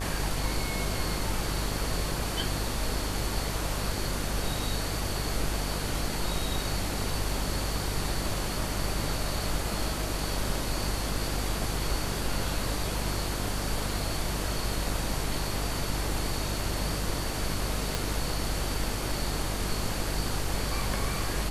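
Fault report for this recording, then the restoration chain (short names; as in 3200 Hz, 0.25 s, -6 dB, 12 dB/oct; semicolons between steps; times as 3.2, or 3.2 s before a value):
buzz 50 Hz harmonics 30 -34 dBFS
17.95 pop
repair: de-click; de-hum 50 Hz, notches 30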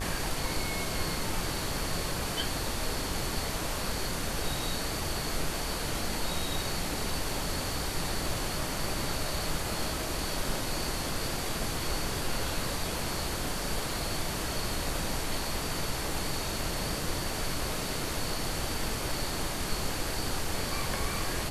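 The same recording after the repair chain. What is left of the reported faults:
17.95 pop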